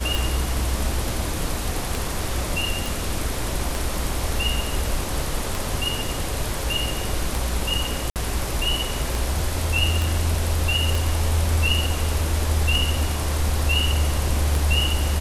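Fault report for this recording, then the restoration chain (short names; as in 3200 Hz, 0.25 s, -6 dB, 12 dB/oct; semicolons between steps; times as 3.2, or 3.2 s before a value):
tick 33 1/3 rpm
2.86 pop
8.1–8.16 gap 58 ms
10.02 pop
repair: de-click; interpolate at 8.1, 58 ms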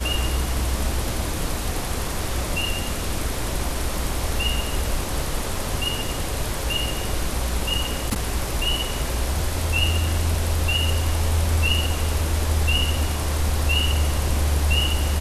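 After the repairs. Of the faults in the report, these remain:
10.02 pop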